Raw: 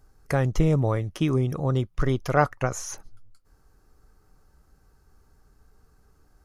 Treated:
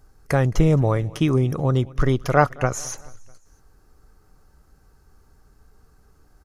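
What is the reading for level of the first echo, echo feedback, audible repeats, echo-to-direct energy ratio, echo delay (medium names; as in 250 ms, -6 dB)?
-23.0 dB, 52%, 3, -21.5 dB, 217 ms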